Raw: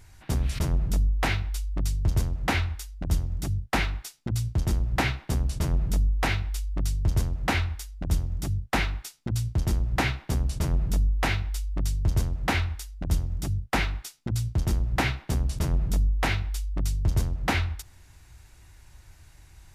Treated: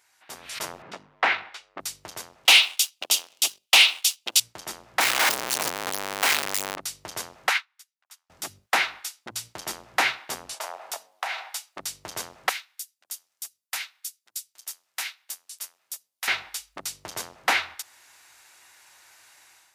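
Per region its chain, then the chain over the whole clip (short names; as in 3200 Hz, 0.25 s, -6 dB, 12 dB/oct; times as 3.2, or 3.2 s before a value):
0.82–1.8 sample leveller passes 1 + BPF 130–2600 Hz
2.45–4.4 HPF 360 Hz + resonant high shelf 2200 Hz +9 dB, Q 3 + sample leveller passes 2
5–6.76 infinite clipping + low shelf 410 Hz +4 dB
7.49–8.3 HPF 1000 Hz 24 dB/oct + upward expander 2.5:1, over -47 dBFS
10.54–11.77 resonant high-pass 710 Hz, resonance Q 2.4 + compressor, threshold -32 dBFS
12.49–16.28 differentiator + upward expander, over -55 dBFS
whole clip: HPF 770 Hz 12 dB/oct; AGC gain up to 11 dB; gain -4 dB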